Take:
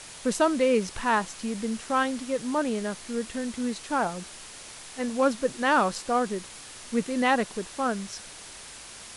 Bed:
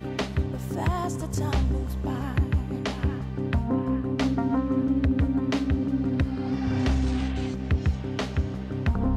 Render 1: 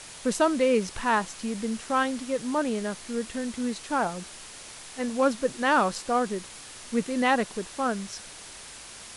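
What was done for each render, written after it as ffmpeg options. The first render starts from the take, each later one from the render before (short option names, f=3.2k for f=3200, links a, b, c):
-af anull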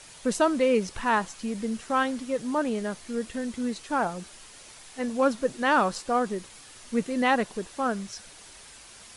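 -af "afftdn=nr=6:nf=-44"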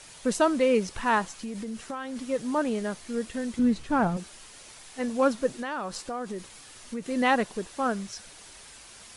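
-filter_complex "[0:a]asplit=3[a][b][c];[a]afade=t=out:st=1.33:d=0.02[d];[b]acompressor=threshold=-31dB:ratio=8:attack=3.2:release=140:knee=1:detection=peak,afade=t=in:st=1.33:d=0.02,afade=t=out:st=2.15:d=0.02[e];[c]afade=t=in:st=2.15:d=0.02[f];[d][e][f]amix=inputs=3:normalize=0,asettb=1/sr,asplit=3[g][h][i];[g]atrim=end=3.594[j];[h]atrim=start=3.59:end=4.17,asetpts=PTS-STARTPTS,afade=t=in:d=0.004:c=qsin,afade=t=out:st=0.576:d=0.004:c=qsin,bass=f=250:g=14,treble=f=4k:g=-6[k];[i]atrim=start=4.166[l];[j][k]acrossfade=d=0.004:c1=hsin:c2=qsin[m];[m][l]acrossfade=d=0.004:c1=qsin:c2=hsin,asettb=1/sr,asplit=3[n][o][p];[n]atrim=end=5.524[q];[o]atrim=start=5.52:end=7.09,asetpts=PTS-STARTPTS,afade=t=in:d=0.004:c=qsin,afade=t=out:st=1.566:d=0.004:c=qsin,acompressor=threshold=-31dB:ratio=4:attack=3.2:release=140:knee=1:detection=peak[r];[p]atrim=start=7.086[s];[q][r]acrossfade=d=0.004:c1=hsin:c2=qsin[t];[t][s]acrossfade=d=0.004:c1=qsin:c2=hsin"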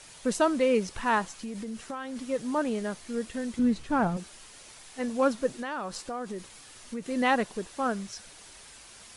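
-af "volume=-1.5dB"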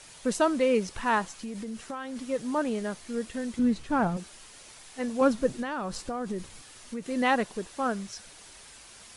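-filter_complex "[0:a]asettb=1/sr,asplit=3[a][b][c];[a]atrim=end=5.214[d];[b]atrim=start=5.21:end=6.62,asetpts=PTS-STARTPTS,afade=t=in:d=0.004:c=qsin,afade=t=out:st=1.406:d=0.004:c=qsin,lowshelf=f=210:g=10.5[e];[c]atrim=start=6.616[f];[d][e]acrossfade=d=0.004:c1=hsin:c2=qsin[g];[g][f]acrossfade=d=0.004:c1=qsin:c2=hsin"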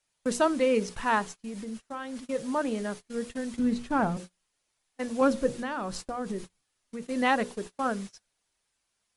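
-af "bandreject=f=60:t=h:w=6,bandreject=f=120:t=h:w=6,bandreject=f=180:t=h:w=6,bandreject=f=240:t=h:w=6,bandreject=f=300:t=h:w=6,bandreject=f=360:t=h:w=6,bandreject=f=420:t=h:w=6,bandreject=f=480:t=h:w=6,bandreject=f=540:t=h:w=6,agate=range=-29dB:threshold=-38dB:ratio=16:detection=peak"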